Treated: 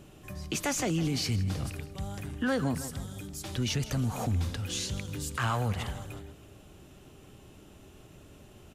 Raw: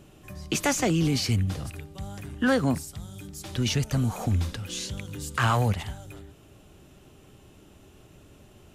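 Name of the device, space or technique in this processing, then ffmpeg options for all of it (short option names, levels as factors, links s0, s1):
clipper into limiter: -af "aecho=1:1:159|318|477|636:0.141|0.0692|0.0339|0.0166,asoftclip=type=hard:threshold=0.168,alimiter=limit=0.0794:level=0:latency=1:release=120"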